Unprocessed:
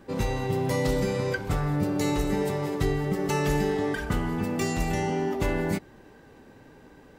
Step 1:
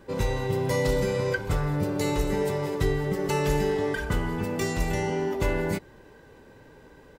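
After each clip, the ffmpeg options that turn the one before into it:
-af "aecho=1:1:2:0.33"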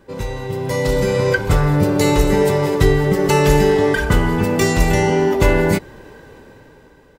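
-af "dynaudnorm=f=290:g=7:m=13dB,volume=1dB"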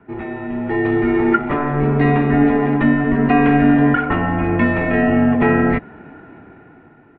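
-af "highpass=f=250:t=q:w=0.5412,highpass=f=250:t=q:w=1.307,lowpass=f=2.6k:t=q:w=0.5176,lowpass=f=2.6k:t=q:w=0.7071,lowpass=f=2.6k:t=q:w=1.932,afreqshift=-150,volume=2.5dB"

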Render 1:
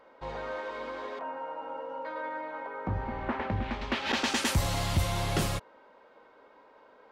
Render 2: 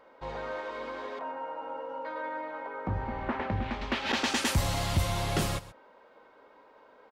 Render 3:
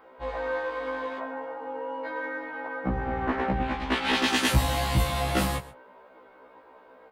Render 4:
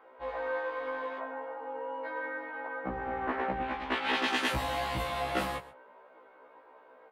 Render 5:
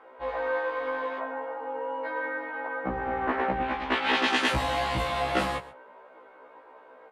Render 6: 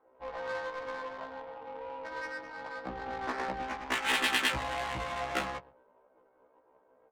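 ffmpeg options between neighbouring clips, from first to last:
-af "aecho=1:1:129:0.141"
-filter_complex "[0:a]acrossover=split=6900[a][b];[a]adynamicsmooth=sensitivity=5:basefreq=4.3k[c];[c][b]amix=inputs=2:normalize=0,afftfilt=real='re*1.73*eq(mod(b,3),0)':imag='im*1.73*eq(mod(b,3),0)':win_size=2048:overlap=0.75,volume=7.5dB"
-af "bass=f=250:g=-12,treble=f=4k:g=-10,volume=-3dB"
-af "lowpass=9.2k,volume=5dB"
-af "tiltshelf=f=1.5k:g=-6,adynamicsmooth=sensitivity=3:basefreq=510,volume=-4dB"

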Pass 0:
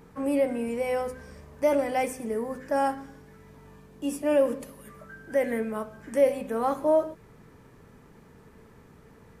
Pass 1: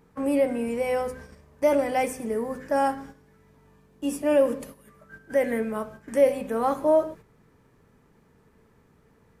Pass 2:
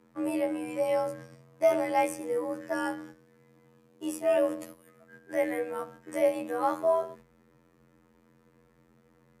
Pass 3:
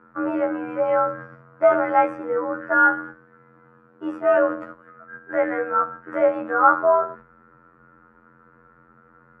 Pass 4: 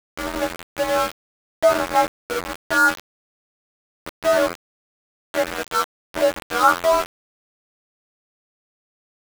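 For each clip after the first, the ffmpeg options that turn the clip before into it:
-af "agate=range=-9dB:threshold=-44dB:ratio=16:detection=peak,volume=2dB"
-af "afftfilt=real='hypot(re,im)*cos(PI*b)':imag='0':win_size=2048:overlap=0.75,afreqshift=50"
-af "lowpass=f=1.4k:t=q:w=11,volume=5dB"
-af "aeval=exprs='val(0)*gte(abs(val(0)),0.0944)':c=same"

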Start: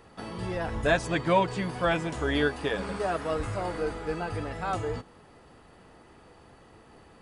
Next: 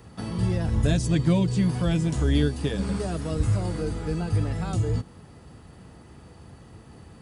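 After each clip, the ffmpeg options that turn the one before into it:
-filter_complex "[0:a]highpass=59,bass=f=250:g=14,treble=f=4k:g=7,acrossover=split=450|3000[a][b][c];[b]acompressor=threshold=-38dB:ratio=6[d];[a][d][c]amix=inputs=3:normalize=0"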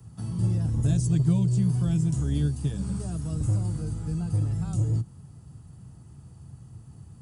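-filter_complex "[0:a]equalizer=f=125:t=o:w=1:g=11,equalizer=f=250:t=o:w=1:g=-4,equalizer=f=500:t=o:w=1:g=-10,equalizer=f=1k:t=o:w=1:g=-3,equalizer=f=2k:t=o:w=1:g=-11,equalizer=f=4k:t=o:w=1:g=-7,equalizer=f=8k:t=o:w=1:g=5,acrossover=split=130|920[a][b][c];[a]asoftclip=type=tanh:threshold=-24.5dB[d];[d][b][c]amix=inputs=3:normalize=0,volume=-3.5dB"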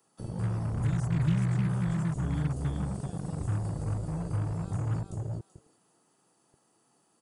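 -filter_complex "[0:a]aecho=1:1:383|766|1149:0.562|0.129|0.0297,acrossover=split=320[a][b];[a]acrusher=bits=4:mix=0:aa=0.5[c];[b]alimiter=level_in=11dB:limit=-24dB:level=0:latency=1:release=127,volume=-11dB[d];[c][d]amix=inputs=2:normalize=0,volume=-6dB"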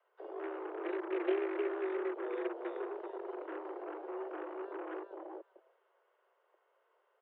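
-af "aeval=exprs='0.141*(cos(1*acos(clip(val(0)/0.141,-1,1)))-cos(1*PI/2))+0.0178*(cos(3*acos(clip(val(0)/0.141,-1,1)))-cos(3*PI/2))':c=same,highpass=f=180:t=q:w=0.5412,highpass=f=180:t=q:w=1.307,lowpass=f=2.8k:t=q:w=0.5176,lowpass=f=2.8k:t=q:w=0.7071,lowpass=f=2.8k:t=q:w=1.932,afreqshift=210,volume=1dB"

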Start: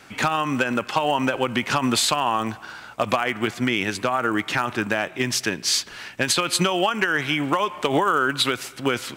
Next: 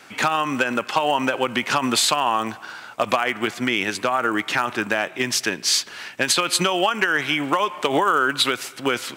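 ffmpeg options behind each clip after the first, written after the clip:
-af "highpass=f=270:p=1,volume=2dB"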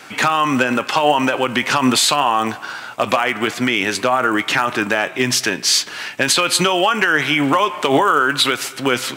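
-filter_complex "[0:a]asplit=2[a][b];[b]alimiter=limit=-16dB:level=0:latency=1:release=28,volume=3dB[c];[a][c]amix=inputs=2:normalize=0,flanger=delay=6.4:depth=1.6:regen=76:speed=0.84:shape=triangular,volume=4dB"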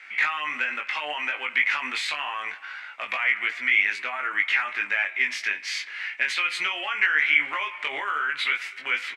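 -filter_complex "[0:a]bandpass=f=2.1k:t=q:w=5.9:csg=0,asplit=2[a][b];[b]adelay=20,volume=-3.5dB[c];[a][c]amix=inputs=2:normalize=0,volume=2dB"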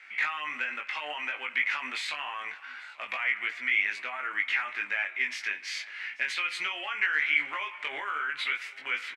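-af "aecho=1:1:837:0.075,volume=-5.5dB"

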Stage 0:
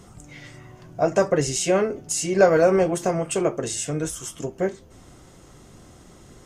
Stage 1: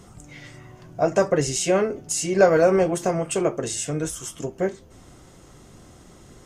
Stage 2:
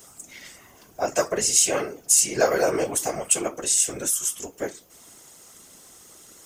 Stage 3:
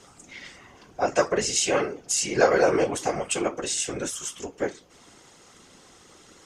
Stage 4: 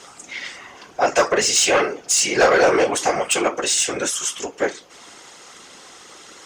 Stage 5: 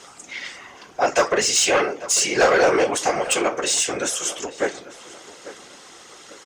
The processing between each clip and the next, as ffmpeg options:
-af anull
-af "aemphasis=mode=production:type=riaa,afftfilt=real='hypot(re,im)*cos(2*PI*random(0))':imag='hypot(re,im)*sin(2*PI*random(1))':win_size=512:overlap=0.75,volume=3dB"
-af "lowpass=4.4k,bandreject=f=640:w=12,volume=2.5dB"
-filter_complex "[0:a]asplit=2[a][b];[b]highpass=f=720:p=1,volume=17dB,asoftclip=type=tanh:threshold=-5dB[c];[a][c]amix=inputs=2:normalize=0,lowpass=f=7.8k:p=1,volume=-6dB"
-filter_complex "[0:a]asplit=2[a][b];[b]adelay=845,lowpass=f=2.8k:p=1,volume=-15.5dB,asplit=2[c][d];[d]adelay=845,lowpass=f=2.8k:p=1,volume=0.33,asplit=2[e][f];[f]adelay=845,lowpass=f=2.8k:p=1,volume=0.33[g];[a][c][e][g]amix=inputs=4:normalize=0,volume=-1.5dB"

